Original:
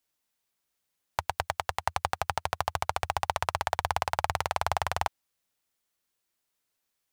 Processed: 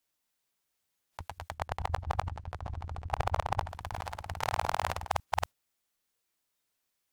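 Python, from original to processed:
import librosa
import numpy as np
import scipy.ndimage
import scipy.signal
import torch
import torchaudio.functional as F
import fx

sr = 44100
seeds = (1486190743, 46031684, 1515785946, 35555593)

y = fx.reverse_delay(x, sr, ms=260, wet_db=-9)
y = fx.tilt_eq(y, sr, slope=-2.5, at=(1.54, 3.68))
y = fx.over_compress(y, sr, threshold_db=-34.0, ratio=-0.5)
y = fx.noise_reduce_blind(y, sr, reduce_db=8)
y = F.gain(torch.from_numpy(y), 1.0).numpy()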